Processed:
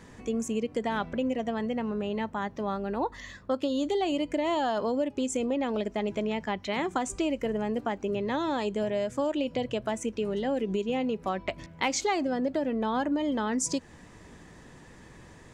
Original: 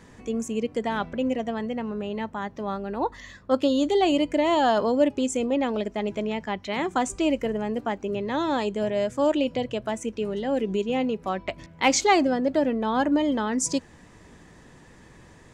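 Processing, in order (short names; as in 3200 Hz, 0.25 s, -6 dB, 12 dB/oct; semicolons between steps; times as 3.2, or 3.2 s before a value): compressor, threshold -25 dBFS, peak gain reduction 10 dB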